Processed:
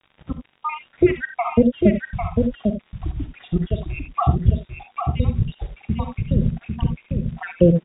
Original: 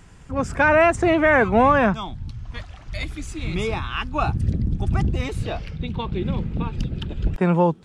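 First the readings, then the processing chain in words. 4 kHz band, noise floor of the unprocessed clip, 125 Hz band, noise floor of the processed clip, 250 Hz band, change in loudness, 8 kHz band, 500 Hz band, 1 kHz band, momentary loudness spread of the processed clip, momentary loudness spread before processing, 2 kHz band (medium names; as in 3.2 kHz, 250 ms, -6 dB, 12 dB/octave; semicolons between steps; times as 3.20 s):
-8.5 dB, -44 dBFS, +3.0 dB, -62 dBFS, +3.0 dB, -1.0 dB, under -35 dB, -2.0 dB, -6.0 dB, 12 LU, 16 LU, -11.0 dB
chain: random holes in the spectrogram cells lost 83%; high-pass 150 Hz 6 dB/octave; band-stop 890 Hz, Q 5.3; spectral noise reduction 12 dB; tilt EQ -3 dB/octave; in parallel at -3 dB: compression 5:1, threshold -33 dBFS, peak gain reduction 19 dB; on the sum: crackle 150 per s -39 dBFS; word length cut 8-bit, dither none; brick-wall FIR low-pass 3.8 kHz; delay 799 ms -5 dB; gated-style reverb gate 100 ms rising, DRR 8 dB; trim +2 dB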